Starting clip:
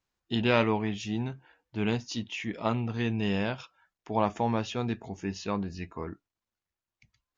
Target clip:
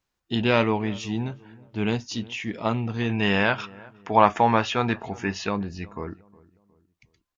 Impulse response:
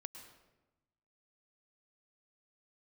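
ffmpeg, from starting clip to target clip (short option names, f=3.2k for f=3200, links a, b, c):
-filter_complex "[0:a]asettb=1/sr,asplit=3[a][b][c];[a]atrim=end=3.094[d];[b]atrim=start=3.09:end=5.49,asetpts=PTS-STARTPTS,afade=t=in:d=0.004:c=qsin,afade=t=out:st=2.396:d=0.004:c=qsin,equalizer=f=1.5k:t=o:w=2.3:g=11.5[e];[c]atrim=start=5.486[f];[d][e]acrossfade=d=0.004:c1=hsin:c2=qsin[g];[g][f]acrossfade=d=0.004:c1=qsin:c2=hsin,asplit=2[h][i];[i]adelay=362,lowpass=f=1.2k:p=1,volume=-21.5dB,asplit=2[j][k];[k]adelay=362,lowpass=f=1.2k:p=1,volume=0.42,asplit=2[l][m];[m]adelay=362,lowpass=f=1.2k:p=1,volume=0.42[n];[h][j][l][n]amix=inputs=4:normalize=0,volume=3.5dB"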